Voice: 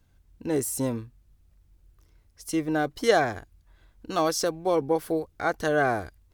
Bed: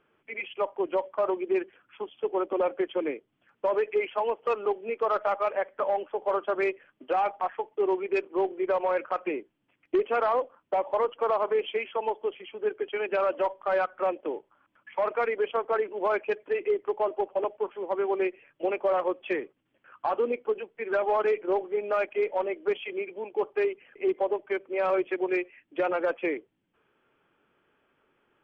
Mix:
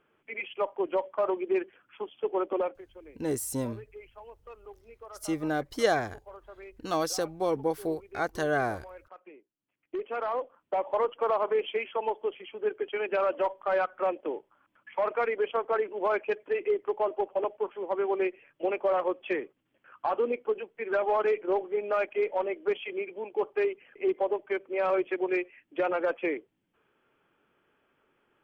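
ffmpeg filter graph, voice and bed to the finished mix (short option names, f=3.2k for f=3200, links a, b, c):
-filter_complex "[0:a]adelay=2750,volume=-4dB[a];[1:a]volume=18.5dB,afade=t=out:st=2.56:d=0.25:silence=0.105925,afade=t=in:st=9.54:d=1.45:silence=0.105925[b];[a][b]amix=inputs=2:normalize=0"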